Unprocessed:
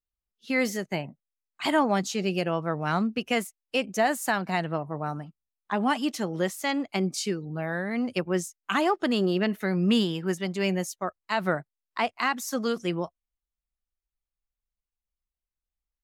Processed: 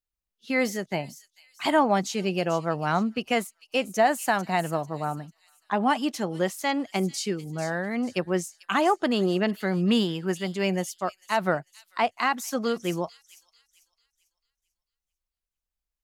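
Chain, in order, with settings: dynamic bell 760 Hz, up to +4 dB, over -35 dBFS, Q 1.4; on a send: feedback echo behind a high-pass 445 ms, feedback 34%, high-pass 4.9 kHz, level -8.5 dB

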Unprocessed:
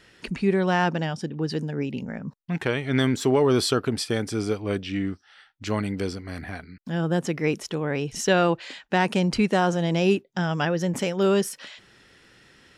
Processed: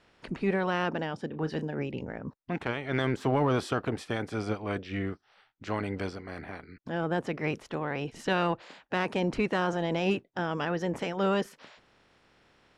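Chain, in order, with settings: spectral peaks clipped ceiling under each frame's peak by 15 dB; low-pass 1.2 kHz 6 dB/octave; in parallel at -7.5 dB: saturation -21.5 dBFS, distortion -11 dB; 1.27–1.78 s: on the sum: doubling 32 ms -12 dB; trim -6.5 dB

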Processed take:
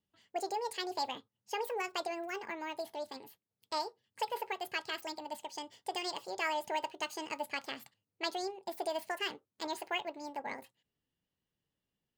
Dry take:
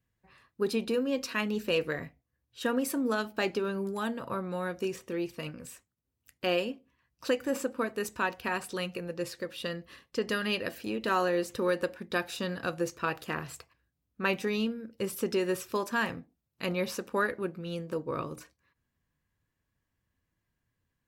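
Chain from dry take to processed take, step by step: tone controls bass -3 dB, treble -3 dB; wide varispeed 1.73×; trim -6 dB

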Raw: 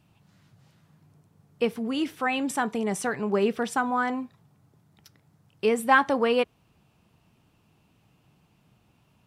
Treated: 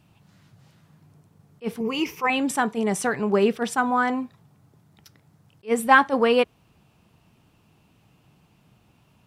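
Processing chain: 1.80–2.30 s: rippled EQ curve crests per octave 0.79, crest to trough 15 dB; attacks held to a fixed rise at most 390 dB/s; trim +4 dB

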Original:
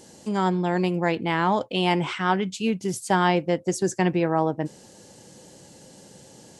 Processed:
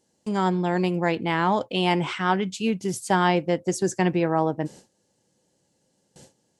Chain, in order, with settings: gate with hold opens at -36 dBFS

